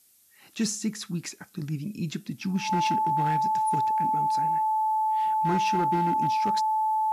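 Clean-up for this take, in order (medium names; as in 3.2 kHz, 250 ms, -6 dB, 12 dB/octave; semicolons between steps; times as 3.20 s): clip repair -19.5 dBFS; band-stop 870 Hz, Q 30; expander -46 dBFS, range -21 dB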